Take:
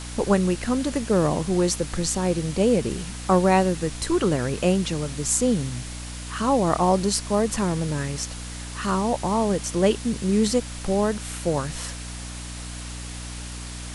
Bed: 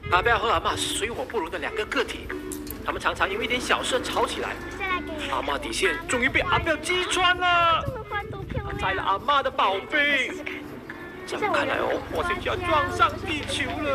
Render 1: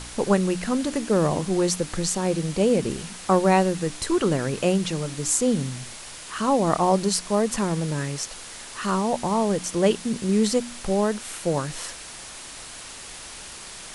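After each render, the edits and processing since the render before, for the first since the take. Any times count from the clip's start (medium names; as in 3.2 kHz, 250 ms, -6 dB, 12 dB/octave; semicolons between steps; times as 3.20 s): de-hum 60 Hz, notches 5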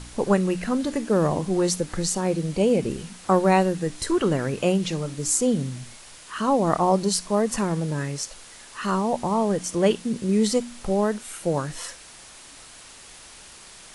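noise print and reduce 6 dB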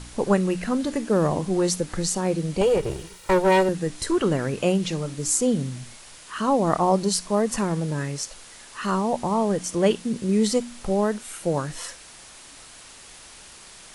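2.61–3.69 s: comb filter that takes the minimum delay 2.1 ms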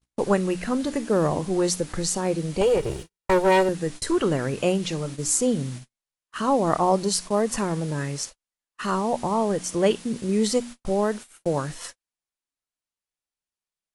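dynamic bell 190 Hz, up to -3 dB, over -32 dBFS, Q 2.5; gate -34 dBFS, range -49 dB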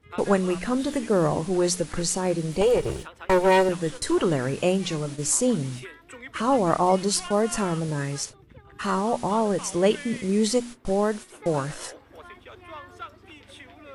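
add bed -19 dB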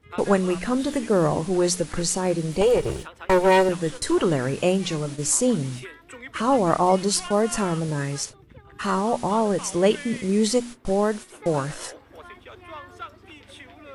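trim +1.5 dB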